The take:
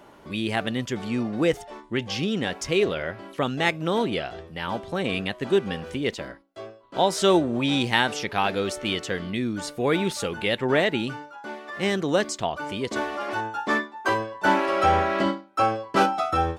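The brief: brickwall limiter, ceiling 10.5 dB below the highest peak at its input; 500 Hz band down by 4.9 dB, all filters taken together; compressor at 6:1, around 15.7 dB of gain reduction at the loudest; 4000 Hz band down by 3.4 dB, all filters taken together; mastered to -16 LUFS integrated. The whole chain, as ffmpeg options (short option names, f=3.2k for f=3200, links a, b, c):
-af "equalizer=f=500:t=o:g=-6.5,equalizer=f=4k:t=o:g=-4.5,acompressor=threshold=-35dB:ratio=6,volume=24dB,alimiter=limit=-5dB:level=0:latency=1"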